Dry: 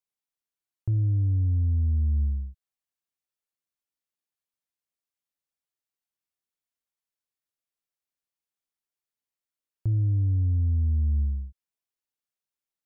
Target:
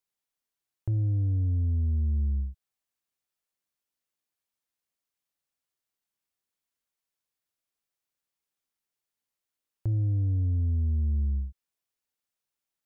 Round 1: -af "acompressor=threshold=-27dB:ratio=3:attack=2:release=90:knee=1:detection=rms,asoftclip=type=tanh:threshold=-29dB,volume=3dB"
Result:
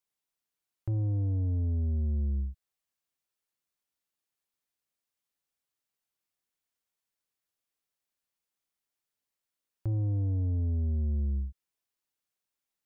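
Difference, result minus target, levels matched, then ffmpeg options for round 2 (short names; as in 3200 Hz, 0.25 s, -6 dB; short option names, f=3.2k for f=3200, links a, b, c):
soft clip: distortion +10 dB
-af "acompressor=threshold=-27dB:ratio=3:attack=2:release=90:knee=1:detection=rms,asoftclip=type=tanh:threshold=-22.5dB,volume=3dB"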